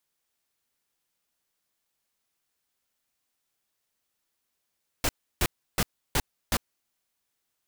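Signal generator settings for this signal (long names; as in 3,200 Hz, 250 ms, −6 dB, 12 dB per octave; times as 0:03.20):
noise bursts pink, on 0.05 s, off 0.32 s, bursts 5, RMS −24 dBFS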